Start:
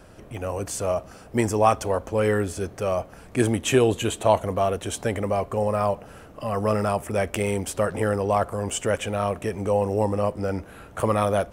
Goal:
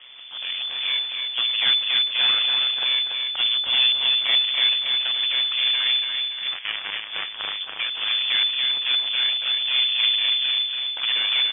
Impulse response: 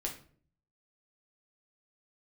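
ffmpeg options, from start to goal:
-filter_complex "[0:a]asettb=1/sr,asplit=3[link_01][link_02][link_03];[link_01]atrim=end=1.994[link_04];[link_02]atrim=start=1.99:end=2.85,asetpts=PTS-STARTPTS,afade=type=in:duration=0.004:curve=qsin,afade=type=out:start_time=0.856:duration=0.004:curve=qsin,highshelf=frequency=2100:gain=10.5[link_05];[link_03]atrim=start=2.846[link_06];[link_04][link_05]acrossfade=duration=0.004:curve1=hsin:curve2=qsin[link_07];[link_07][link_06]acrossfade=duration=0.004:curve1=qsin:curve2=hsin,asplit=2[link_08][link_09];[link_09]acompressor=threshold=-40dB:ratio=6,volume=3dB[link_10];[link_08][link_10]amix=inputs=2:normalize=0,aeval=exprs='abs(val(0))':channel_layout=same,asettb=1/sr,asplit=3[link_11][link_12][link_13];[link_11]atrim=end=6.474[link_14];[link_12]atrim=start=6.47:end=7.6,asetpts=PTS-STARTPTS,afade=type=in:duration=0.004:curve=qsin,afade=type=out:start_time=1.126:duration=0.004:curve=qsin,aeval=exprs='0.596*(cos(1*acos(clip(val(0)/0.596,-1,1)))-cos(1*PI/2))+0.15*(cos(7*acos(clip(val(0)/0.596,-1,1)))-cos(7*PI/2))':channel_layout=same[link_15];[link_13]atrim=start=7.596[link_16];[link_14][link_15]acrossfade=duration=0.004:curve1=hsin:curve2=qsin[link_17];[link_17][link_16]acrossfade=duration=0.004:curve1=qsin:curve2=hsin,tremolo=f=130:d=0.71,asoftclip=type=hard:threshold=-13dB,aecho=1:1:285|570|855|1140|1425|1710:0.562|0.253|0.114|0.0512|0.0231|0.0104,lowpass=frequency=3000:width_type=q:width=0.5098,lowpass=frequency=3000:width_type=q:width=0.6013,lowpass=frequency=3000:width_type=q:width=0.9,lowpass=frequency=3000:width_type=q:width=2.563,afreqshift=-3500"

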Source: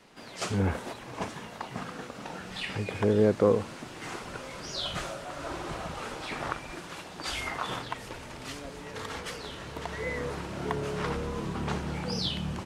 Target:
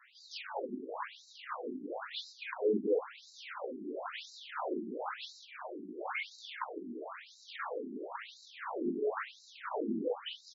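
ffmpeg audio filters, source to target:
ffmpeg -i in.wav -af "alimiter=limit=-21.5dB:level=0:latency=1:release=282,flanger=delay=16:depth=7.9:speed=1.7,asoftclip=type=tanh:threshold=-31dB,highshelf=frequency=2300:gain=-11,aecho=1:1:448:0.168,atempo=1.2,afftfilt=real='re*between(b*sr/1024,270*pow(5400/270,0.5+0.5*sin(2*PI*0.98*pts/sr))/1.41,270*pow(5400/270,0.5+0.5*sin(2*PI*0.98*pts/sr))*1.41)':imag='im*between(b*sr/1024,270*pow(5400/270,0.5+0.5*sin(2*PI*0.98*pts/sr))/1.41,270*pow(5400/270,0.5+0.5*sin(2*PI*0.98*pts/sr))*1.41)':win_size=1024:overlap=0.75,volume=11dB" out.wav

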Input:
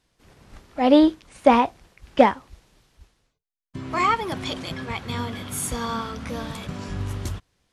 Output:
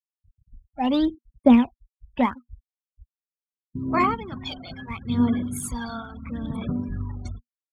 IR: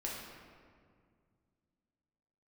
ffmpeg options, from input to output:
-af "afftfilt=real='re*gte(hypot(re,im),0.0224)':imag='im*gte(hypot(re,im),0.0224)':win_size=1024:overlap=0.75,equalizer=frequency=240:width_type=o:width=0.26:gain=12,aphaser=in_gain=1:out_gain=1:delay=1.4:decay=0.73:speed=0.75:type=sinusoidal,volume=-8dB"

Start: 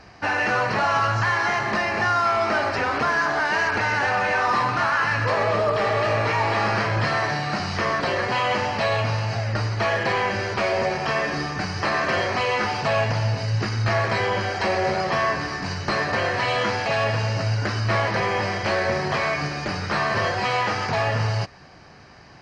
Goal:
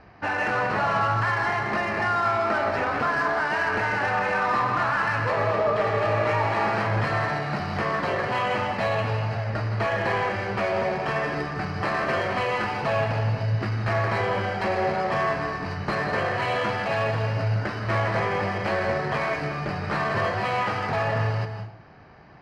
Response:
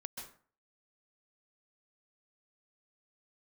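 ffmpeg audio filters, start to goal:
-filter_complex "[0:a]aemphasis=mode=reproduction:type=50fm,adynamicsmooth=sensitivity=3:basefreq=4000,asplit=2[link_01][link_02];[1:a]atrim=start_sample=2205,asetrate=36603,aresample=44100[link_03];[link_02][link_03]afir=irnorm=-1:irlink=0,volume=4.5dB[link_04];[link_01][link_04]amix=inputs=2:normalize=0,volume=-9dB"

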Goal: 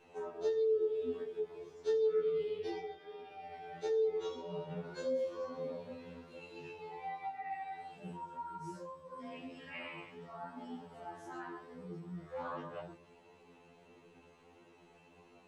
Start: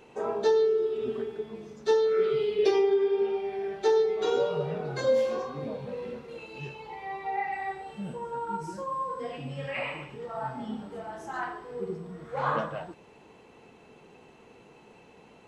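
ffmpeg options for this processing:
ffmpeg -i in.wav -filter_complex "[0:a]acrossover=split=390[link_01][link_02];[link_02]acompressor=threshold=-36dB:ratio=3[link_03];[link_01][link_03]amix=inputs=2:normalize=0,flanger=delay=20:depth=5.1:speed=1.5,afftfilt=real='re*2*eq(mod(b,4),0)':imag='im*2*eq(mod(b,4),0)':win_size=2048:overlap=0.75,volume=-2dB" out.wav

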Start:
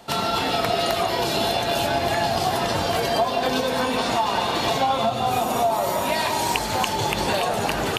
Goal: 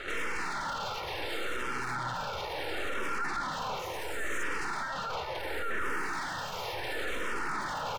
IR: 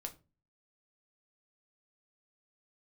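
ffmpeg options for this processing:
-filter_complex "[0:a]asoftclip=type=tanh:threshold=-21dB,acrossover=split=310|5600[link_01][link_02][link_03];[link_03]adelay=80[link_04];[link_01]adelay=150[link_05];[link_05][link_02][link_04]amix=inputs=3:normalize=0,asettb=1/sr,asplit=3[link_06][link_07][link_08];[link_06]atrim=end=1.544[link_09];[link_07]atrim=start=1.54:end=2.15,asetpts=PTS-STARTPTS,afade=type=in:duration=0.004:curve=qsin,afade=type=out:start_time=0.606:duration=0.004:curve=qsin,aeval=exprs='val(0)*sin(2*PI*62*n/s)':channel_layout=same[link_10];[link_08]atrim=start=2.146[link_11];[link_09][link_10]acrossfade=duration=0.004:curve1=hsin:curve2=qsin[link_12];[link_12][link_11]acrossfade=duration=0.004:curve1=qsin:curve2=hsin,aeval=exprs='abs(val(0))':channel_layout=same,asettb=1/sr,asplit=3[link_13][link_14][link_15];[link_13]atrim=end=3.794[link_16];[link_14]atrim=start=3.79:end=4.43,asetpts=PTS-STARTPTS,afade=type=in:duration=0.004:curve=qsin,afade=type=out:start_time=0.636:duration=0.004:curve=qsin,highshelf=frequency=5500:width_type=q:width=3:gain=8.5[link_17];[link_15]atrim=start=4.426[link_18];[link_16][link_17]acrossfade=duration=0.004:curve1=hsin:curve2=qsin[link_19];[link_19][link_18]acrossfade=duration=0.004:curve1=qsin:curve2=hsin,asplit=2[link_20][link_21];[link_21]highpass=frequency=720:poles=1,volume=21dB,asoftclip=type=tanh:threshold=-21.5dB[link_22];[link_20][link_22]amix=inputs=2:normalize=0,lowpass=frequency=1100:poles=1,volume=-6dB,aecho=1:1:2.2:0.36,alimiter=level_in=5.5dB:limit=-24dB:level=0:latency=1,volume=-5.5dB,asplit=2[link_23][link_24];[link_24]afreqshift=-0.71[link_25];[link_23][link_25]amix=inputs=2:normalize=1,volume=7dB"

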